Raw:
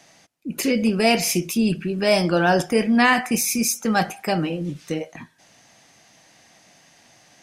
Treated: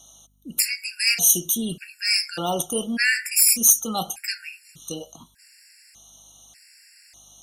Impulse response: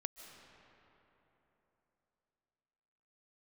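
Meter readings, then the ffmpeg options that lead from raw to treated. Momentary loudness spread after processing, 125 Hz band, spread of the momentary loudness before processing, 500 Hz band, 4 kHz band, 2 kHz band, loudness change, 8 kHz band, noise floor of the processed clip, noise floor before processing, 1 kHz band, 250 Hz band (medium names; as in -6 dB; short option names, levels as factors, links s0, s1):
20 LU, -11.5 dB, 13 LU, -11.5 dB, +3.0 dB, -1.5 dB, +1.0 dB, +7.5 dB, -56 dBFS, -55 dBFS, -9.5 dB, -11.5 dB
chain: -filter_complex "[0:a]aeval=exprs='val(0)+0.002*(sin(2*PI*50*n/s)+sin(2*PI*2*50*n/s)/2+sin(2*PI*3*50*n/s)/3+sin(2*PI*4*50*n/s)/4+sin(2*PI*5*50*n/s)/5)':c=same,crystalizer=i=8:c=0,asplit=2[s0][s1];[s1]aeval=exprs='(mod(0.422*val(0)+1,2)-1)/0.422':c=same,volume=0.501[s2];[s0][s2]amix=inputs=2:normalize=0,afftfilt=real='re*gt(sin(2*PI*0.84*pts/sr)*(1-2*mod(floor(b*sr/1024/1400),2)),0)':imag='im*gt(sin(2*PI*0.84*pts/sr)*(1-2*mod(floor(b*sr/1024/1400),2)),0)':win_size=1024:overlap=0.75,volume=0.251"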